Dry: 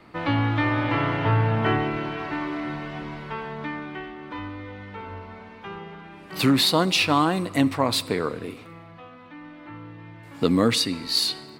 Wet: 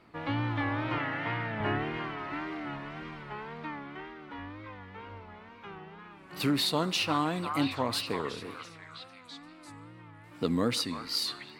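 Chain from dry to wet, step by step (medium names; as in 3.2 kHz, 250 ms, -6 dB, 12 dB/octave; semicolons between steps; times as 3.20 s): 0.99–1.61 s: cabinet simulation 180–9100 Hz, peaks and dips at 420 Hz -8 dB, 1 kHz -7 dB, 1.9 kHz +8 dB; repeats whose band climbs or falls 342 ms, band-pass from 1.1 kHz, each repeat 0.7 oct, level -4 dB; wow and flutter 96 cents; trim -8.5 dB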